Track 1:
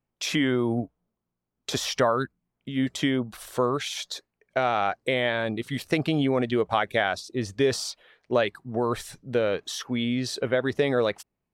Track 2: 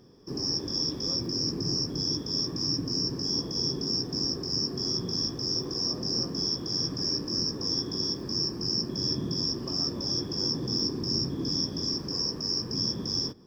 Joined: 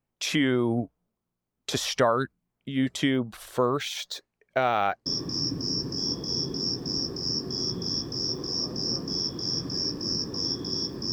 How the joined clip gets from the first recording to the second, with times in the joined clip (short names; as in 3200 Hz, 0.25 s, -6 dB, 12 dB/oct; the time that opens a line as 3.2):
track 1
3.13–5.06 decimation joined by straight lines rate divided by 2×
5.06 switch to track 2 from 2.33 s